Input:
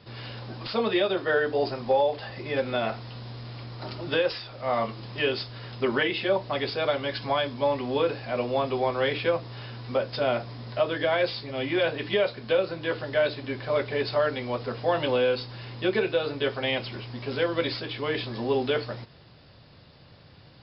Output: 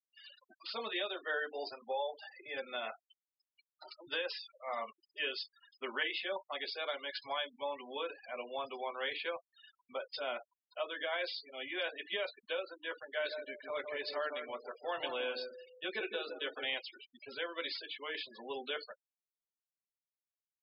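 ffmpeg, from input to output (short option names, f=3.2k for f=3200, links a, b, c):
-filter_complex "[0:a]asettb=1/sr,asplit=3[a][b][c];[a]atrim=end=13.054[d];[b]atrim=start=13.05:end=16.74,asetpts=PTS-STARTPTS,afade=t=in:d=0.004:c=qsin,afade=t=out:st=3.686:d=0.004:c=qsin,asplit=2[e][f];[f]adelay=160,lowpass=f=870:p=1,volume=-4dB,asplit=2[g][h];[h]adelay=160,lowpass=f=870:p=1,volume=0.45,asplit=2[i][j];[j]adelay=160,lowpass=f=870:p=1,volume=0.45,asplit=2[k][l];[l]adelay=160,lowpass=f=870:p=1,volume=0.45,asplit=2[m][n];[n]adelay=160,lowpass=f=870:p=1,volume=0.45,asplit=2[o][p];[p]adelay=160,lowpass=f=870:p=1,volume=0.45[q];[e][g][i][k][m][o][q]amix=inputs=7:normalize=0,atrim=end_sample=162729[r];[c]atrim=start=16.736[s];[d][r]acrossfade=d=0.004:c1=hsin:c2=qsin[t];[t][s]acrossfade=d=0.004:c1=qsin:c2=hsin,highpass=f=1.5k:p=1,afftfilt=real='re*gte(hypot(re,im),0.0158)':imag='im*gte(hypot(re,im),0.0158)':win_size=1024:overlap=0.75,volume=-6dB"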